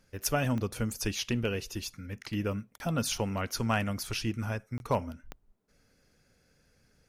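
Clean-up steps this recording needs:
clipped peaks rebuilt −17.5 dBFS
click removal
repair the gap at 0:02.78/0:04.78, 21 ms

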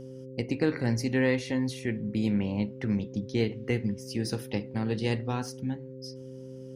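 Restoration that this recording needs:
hum removal 130.7 Hz, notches 4

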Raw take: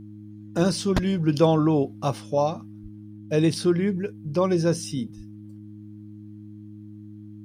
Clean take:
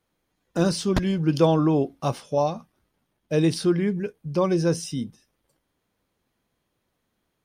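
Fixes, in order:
hum removal 105 Hz, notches 3
high-pass at the plosives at 0:02.82/0:05.16

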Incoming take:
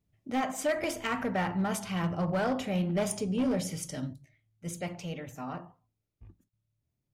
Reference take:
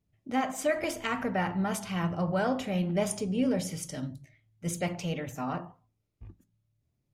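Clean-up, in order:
clipped peaks rebuilt −23.5 dBFS
repair the gap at 0:06.49, 37 ms
level 0 dB, from 0:04.13 +5 dB

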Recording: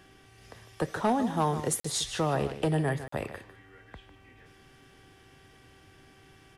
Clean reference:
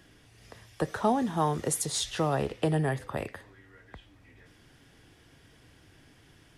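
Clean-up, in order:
clipped peaks rebuilt −18.5 dBFS
hum removal 386.7 Hz, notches 8
repair the gap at 0:01.80/0:03.08, 44 ms
echo removal 151 ms −12.5 dB

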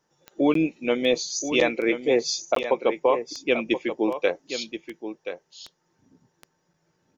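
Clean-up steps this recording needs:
click removal
repair the gap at 0:00.54/0:02.55, 13 ms
echo removal 1,028 ms −10 dB

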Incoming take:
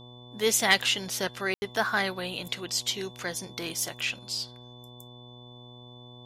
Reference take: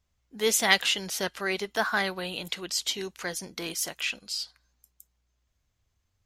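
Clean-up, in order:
clipped peaks rebuilt −7.5 dBFS
hum removal 122.3 Hz, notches 9
notch filter 3,500 Hz, Q 30
ambience match 0:01.54–0:01.62

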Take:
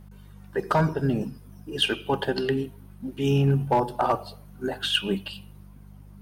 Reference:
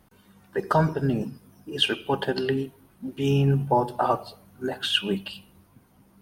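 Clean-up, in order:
clipped peaks rebuilt −13.5 dBFS
hum removal 49.6 Hz, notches 4

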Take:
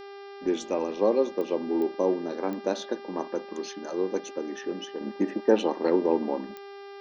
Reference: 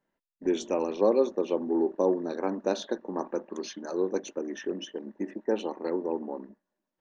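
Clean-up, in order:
click removal
hum removal 398.9 Hz, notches 14
level 0 dB, from 0:05.01 −7 dB

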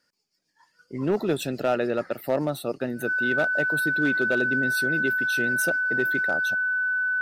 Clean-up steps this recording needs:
clipped peaks rebuilt −15.5 dBFS
notch filter 1,500 Hz, Q 30

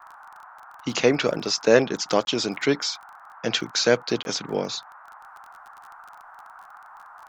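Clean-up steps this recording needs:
click removal
repair the gap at 0:02.25/0:04.23, 21 ms
noise reduction from a noise print 22 dB

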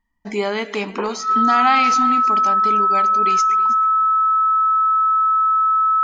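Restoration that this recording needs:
notch filter 1,300 Hz, Q 30
echo removal 320 ms −19.5 dB

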